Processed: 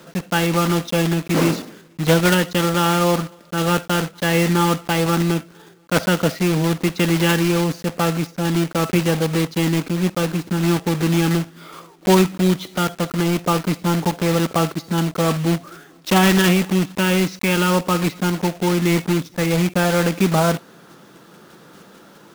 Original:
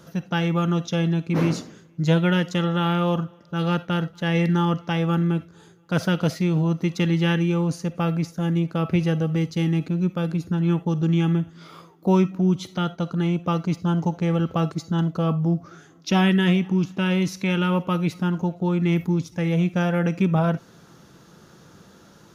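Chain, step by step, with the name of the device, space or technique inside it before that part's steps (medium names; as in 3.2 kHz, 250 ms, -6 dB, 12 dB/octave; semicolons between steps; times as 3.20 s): early digital voice recorder (band-pass 210–3800 Hz; block-companded coder 3-bit); trim +6.5 dB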